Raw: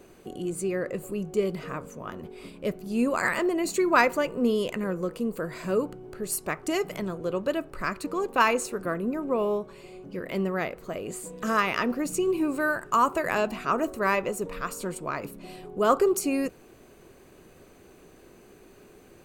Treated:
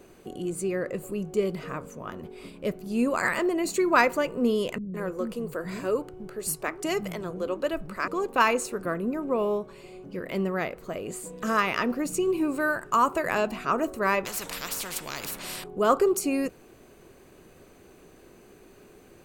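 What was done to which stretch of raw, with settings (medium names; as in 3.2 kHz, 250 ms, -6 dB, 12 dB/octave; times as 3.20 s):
4.78–8.08 s: bands offset in time lows, highs 160 ms, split 240 Hz
14.25–15.64 s: spectrum-flattening compressor 4:1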